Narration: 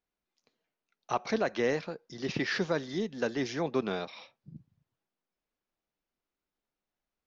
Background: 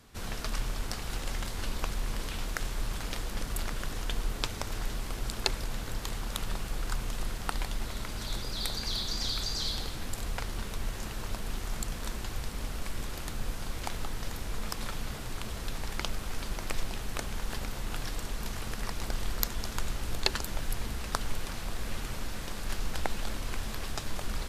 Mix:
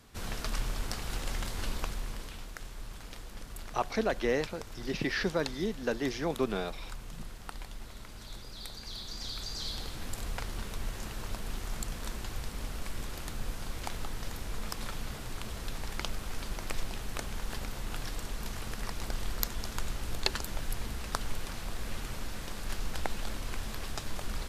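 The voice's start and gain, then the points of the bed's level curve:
2.65 s, -0.5 dB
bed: 1.71 s -0.5 dB
2.51 s -10 dB
8.79 s -10 dB
10.09 s -2 dB

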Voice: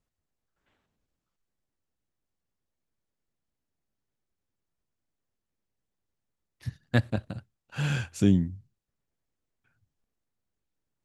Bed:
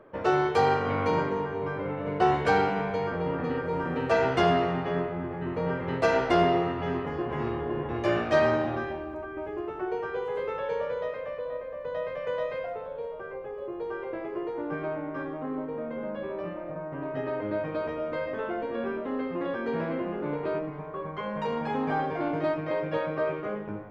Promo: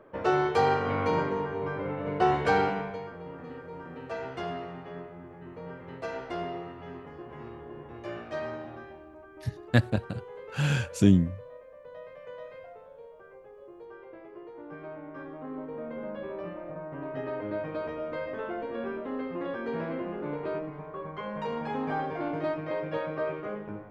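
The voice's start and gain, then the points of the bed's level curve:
2.80 s, +2.0 dB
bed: 2.68 s -1 dB
3.14 s -12.5 dB
14.44 s -12.5 dB
15.9 s -3 dB

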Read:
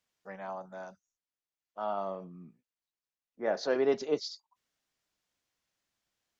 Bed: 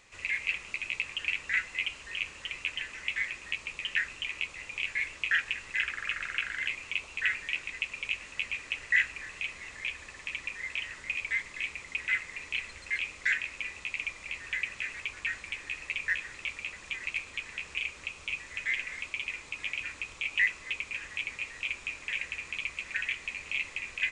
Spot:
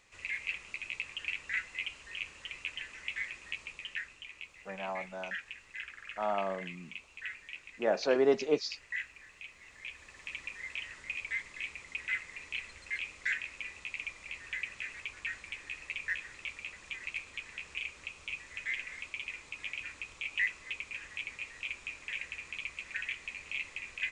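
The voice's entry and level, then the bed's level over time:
4.40 s, +1.5 dB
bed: 3.62 s -5.5 dB
4.25 s -12.5 dB
9.5 s -12.5 dB
10.32 s -5 dB

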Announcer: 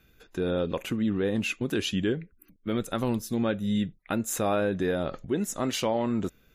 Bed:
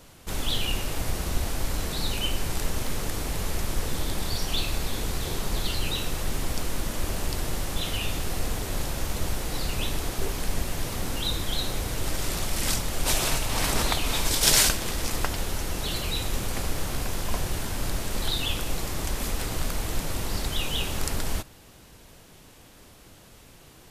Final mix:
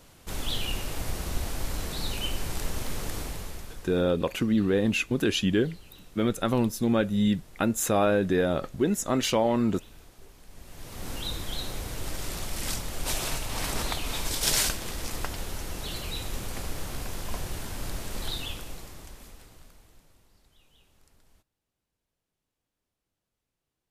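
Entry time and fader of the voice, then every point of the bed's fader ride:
3.50 s, +3.0 dB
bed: 3.2 s -3.5 dB
4.13 s -23 dB
10.47 s -23 dB
11.1 s -5.5 dB
18.33 s -5.5 dB
20.34 s -34.5 dB

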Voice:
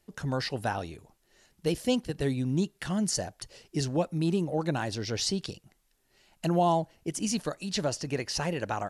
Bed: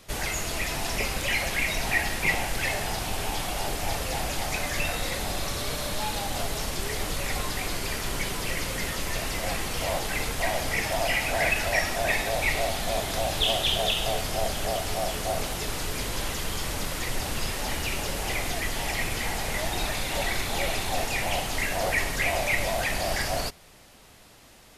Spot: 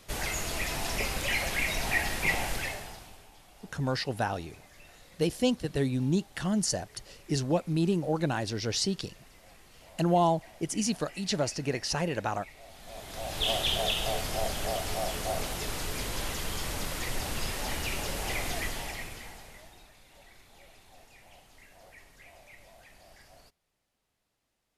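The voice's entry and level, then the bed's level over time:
3.55 s, +0.5 dB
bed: 2.53 s -3 dB
3.3 s -26 dB
12.56 s -26 dB
13.5 s -3.5 dB
18.63 s -3.5 dB
19.91 s -28 dB

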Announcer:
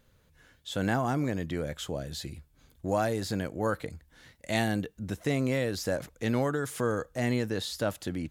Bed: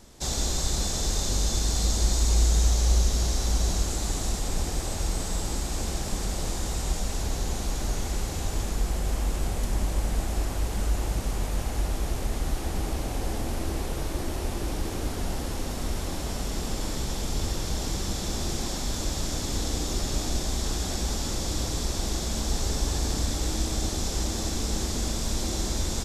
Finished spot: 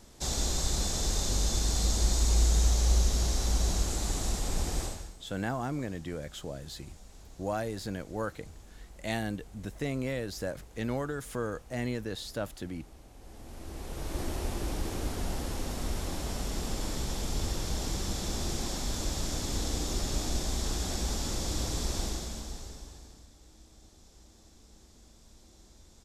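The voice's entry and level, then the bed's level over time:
4.55 s, -5.0 dB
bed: 4.84 s -3 dB
5.17 s -23 dB
13.14 s -23 dB
14.2 s -3.5 dB
22.01 s -3.5 dB
23.3 s -28.5 dB

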